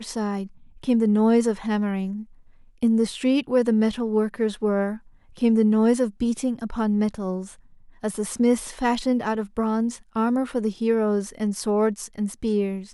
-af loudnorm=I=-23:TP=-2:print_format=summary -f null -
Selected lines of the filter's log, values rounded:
Input Integrated:    -23.8 LUFS
Input True Peak:      -9.2 dBTP
Input LRA:             2.8 LU
Input Threshold:     -34.1 LUFS